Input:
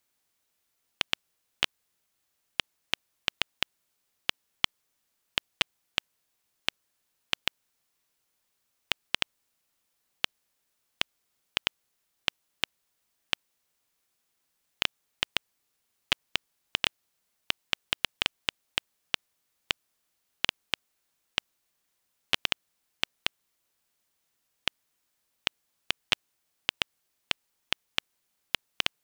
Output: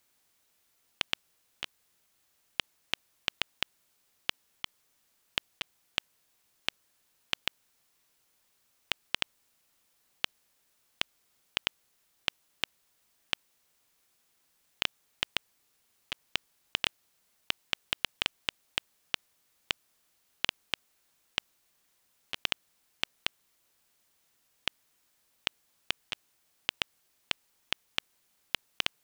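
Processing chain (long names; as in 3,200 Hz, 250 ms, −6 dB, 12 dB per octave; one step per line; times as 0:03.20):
compressor whose output falls as the input rises −29 dBFS, ratio −0.5
level +1 dB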